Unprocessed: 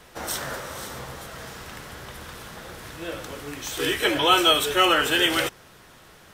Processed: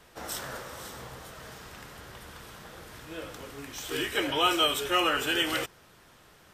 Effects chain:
speed change −3%
level −6.5 dB

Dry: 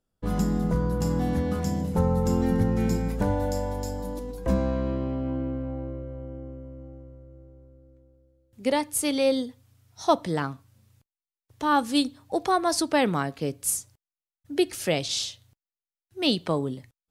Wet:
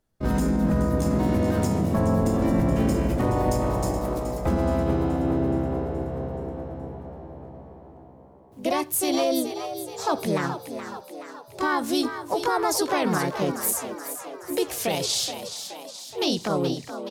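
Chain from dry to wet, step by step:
pitch-shifted copies added +4 semitones 0 dB
brickwall limiter −16 dBFS, peak gain reduction 11 dB
echo with shifted repeats 424 ms, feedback 58%, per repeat +64 Hz, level −10 dB
level +1.5 dB

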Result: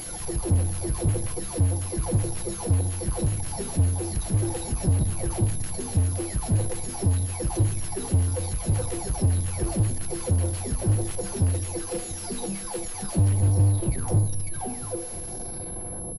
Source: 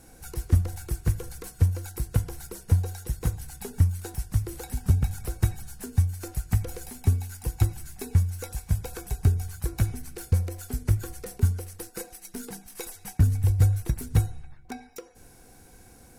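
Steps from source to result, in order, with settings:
every frequency bin delayed by itself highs early, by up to 884 ms
power curve on the samples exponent 0.5
flat-topped bell 2,000 Hz −12 dB
single-tap delay 692 ms −17.5 dB
on a send at −19.5 dB: convolution reverb RT60 4.8 s, pre-delay 53 ms
on the sum: switching amplifier with a slow clock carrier 11,000 Hz
level −2 dB

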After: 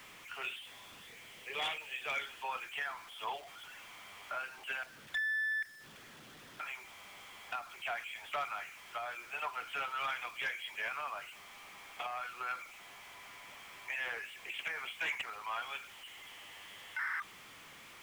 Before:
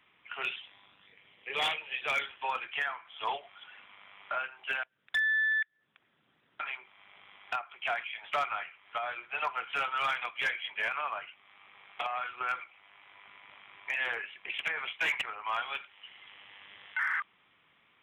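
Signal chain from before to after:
converter with a step at zero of −42 dBFS
level −7 dB

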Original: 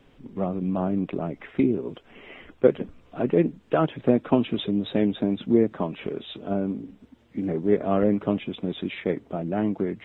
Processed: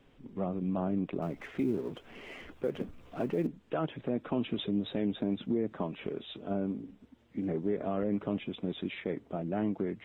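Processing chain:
0:01.22–0:03.47: mu-law and A-law mismatch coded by mu
brickwall limiter −15.5 dBFS, peak gain reduction 11 dB
level −6 dB

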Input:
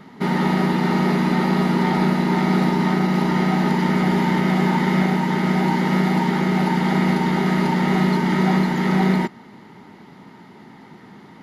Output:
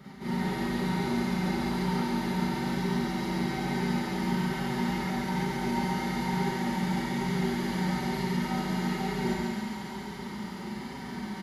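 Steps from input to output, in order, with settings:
sub-octave generator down 2 octaves, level −3 dB
high-pass filter 79 Hz 12 dB per octave
bass and treble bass +3 dB, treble +7 dB
comb filter 5.2 ms, depth 40%
reversed playback
downward compressor 5 to 1, threshold −30 dBFS, peak gain reduction 18 dB
reversed playback
flanger 1.1 Hz, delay 7.2 ms, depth 2.4 ms, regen +48%
on a send: feedback echo with a high-pass in the loop 139 ms, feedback 81%, high-pass 890 Hz, level −4 dB
on the sum: four-comb reverb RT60 1 s, combs from 30 ms, DRR −8 dB
level −2.5 dB

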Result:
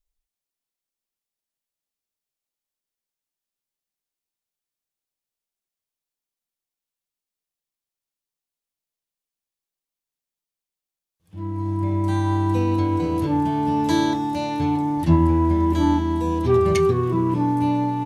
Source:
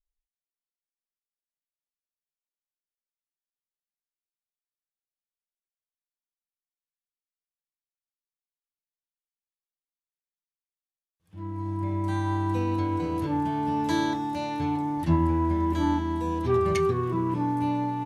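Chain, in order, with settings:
parametric band 1,500 Hz −4.5 dB 1.4 octaves
level +6.5 dB

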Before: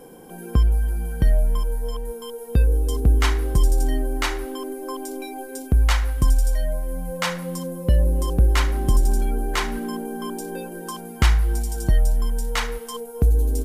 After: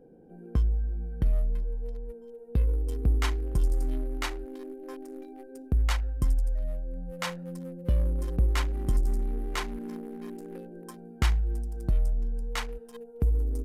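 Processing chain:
adaptive Wiener filter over 41 samples
level −7.5 dB

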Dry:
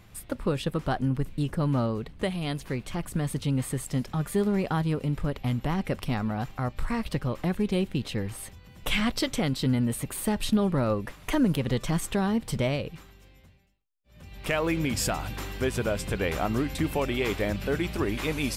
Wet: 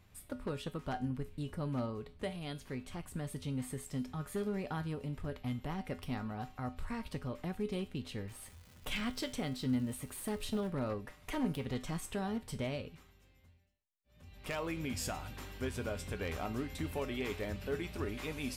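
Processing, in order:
wavefolder on the positive side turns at −19.5 dBFS
0:08.27–0:10.68: surface crackle 290 per second −36 dBFS
tuned comb filter 84 Hz, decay 0.31 s, harmonics odd, mix 70%
level −3 dB

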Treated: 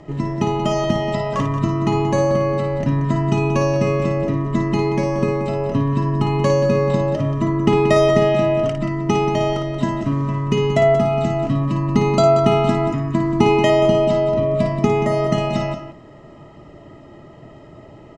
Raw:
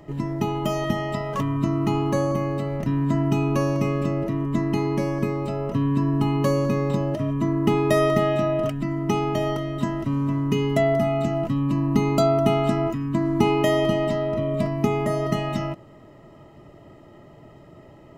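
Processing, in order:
low-pass filter 7,900 Hz 24 dB per octave
on a send: loudspeakers that aren't time-aligned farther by 19 metres −7 dB, 62 metres −11 dB
on the sum: level +4.5 dB

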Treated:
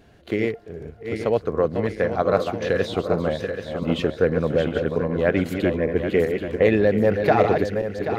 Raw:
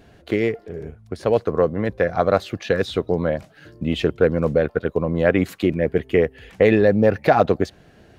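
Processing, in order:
feedback delay that plays each chunk backwards 391 ms, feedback 64%, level −6 dB
echo ahead of the sound 43 ms −24 dB
level −3 dB

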